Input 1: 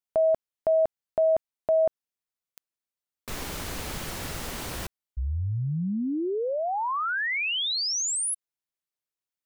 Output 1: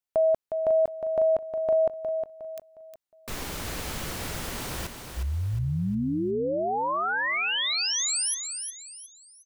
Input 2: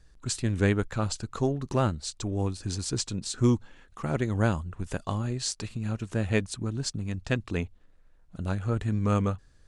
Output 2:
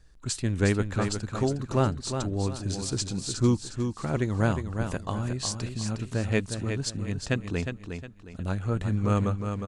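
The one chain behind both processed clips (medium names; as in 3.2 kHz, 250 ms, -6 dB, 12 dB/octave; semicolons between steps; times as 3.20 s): feedback delay 360 ms, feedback 34%, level -7 dB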